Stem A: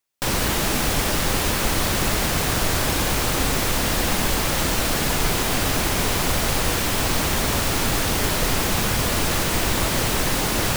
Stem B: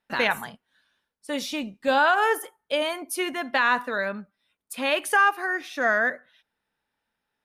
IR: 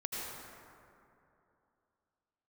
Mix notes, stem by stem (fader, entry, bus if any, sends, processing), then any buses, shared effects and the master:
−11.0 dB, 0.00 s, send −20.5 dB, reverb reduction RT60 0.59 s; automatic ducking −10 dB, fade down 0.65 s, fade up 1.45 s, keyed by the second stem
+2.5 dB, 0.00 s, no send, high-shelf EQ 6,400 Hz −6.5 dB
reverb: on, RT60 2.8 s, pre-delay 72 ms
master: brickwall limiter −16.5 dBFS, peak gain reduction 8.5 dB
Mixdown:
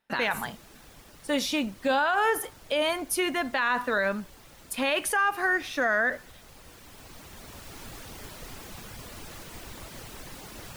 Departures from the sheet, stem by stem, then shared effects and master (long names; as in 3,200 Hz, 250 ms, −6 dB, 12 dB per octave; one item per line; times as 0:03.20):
stem A −11.0 dB → −20.5 dB
stem B: missing high-shelf EQ 6,400 Hz −6.5 dB